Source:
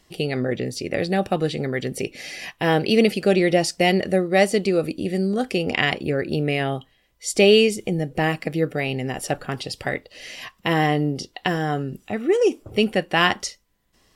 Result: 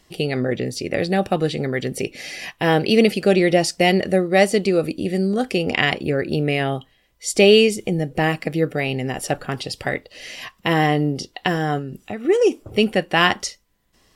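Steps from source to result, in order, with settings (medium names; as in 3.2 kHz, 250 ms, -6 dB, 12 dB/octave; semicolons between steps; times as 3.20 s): 11.78–12.25 s: compression 4:1, threshold -28 dBFS, peak gain reduction 7 dB; trim +2 dB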